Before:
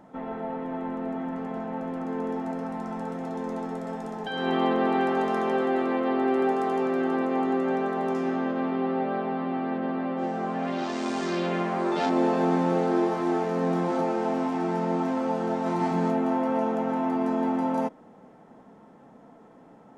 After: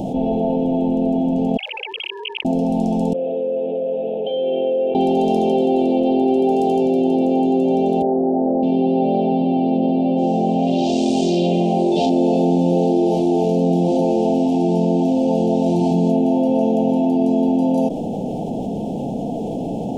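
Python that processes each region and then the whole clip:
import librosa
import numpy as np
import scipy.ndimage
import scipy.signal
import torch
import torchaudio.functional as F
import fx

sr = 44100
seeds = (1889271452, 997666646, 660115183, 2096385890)

y = fx.chain(x, sr, fx.sine_speech(),
    fx.cheby2_highpass(hz=760.0, order=4, stop_db=50),
    fx.env_flatten(amount_pct=50), at=(1.57, 2.45))
y = fx.chain(y, sr, fx.vowel_filter(vowel='e'),
    fx.resample_bad(factor=6, down='none', up='filtered'), at=(3.13, 4.95))
y = fx.chain(y, sr, fx.brickwall_lowpass(high_hz=1600.0),
    fx.peak_eq(hz=110.0, db=-15.0, octaves=1.8),
    fx.env_flatten(amount_pct=50), at=(8.02, 8.63))
y = scipy.signal.sosfilt(scipy.signal.ellip(3, 1.0, 40, [760.0, 2800.0], 'bandstop', fs=sr, output='sos'), y)
y = fx.low_shelf(y, sr, hz=180.0, db=6.5)
y = fx.env_flatten(y, sr, amount_pct=70)
y = y * 10.0 ** (5.5 / 20.0)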